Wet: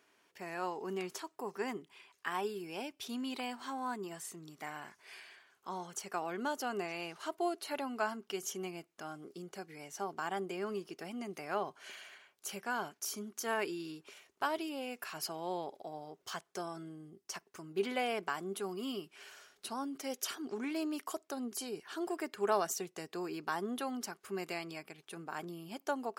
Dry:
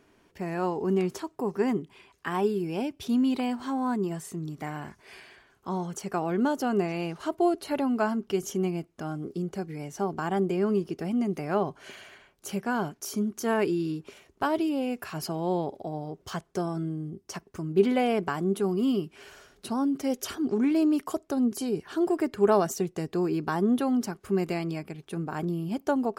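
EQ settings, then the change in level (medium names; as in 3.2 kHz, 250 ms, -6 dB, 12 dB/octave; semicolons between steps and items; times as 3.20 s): high-pass 1.2 kHz 6 dB/octave; -2.0 dB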